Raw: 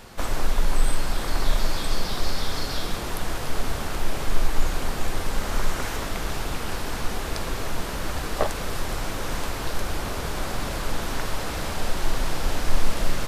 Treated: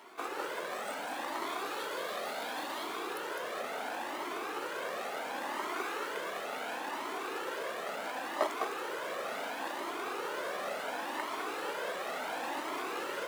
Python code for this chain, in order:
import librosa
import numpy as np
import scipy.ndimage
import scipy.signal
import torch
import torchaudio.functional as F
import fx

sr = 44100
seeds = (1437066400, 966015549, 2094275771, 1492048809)

p1 = scipy.signal.medfilt(x, 9)
p2 = scipy.signal.sosfilt(scipy.signal.butter(4, 310.0, 'highpass', fs=sr, output='sos'), p1)
p3 = p2 + fx.echo_single(p2, sr, ms=206, db=-5.0, dry=0)
y = fx.comb_cascade(p3, sr, direction='rising', hz=0.71)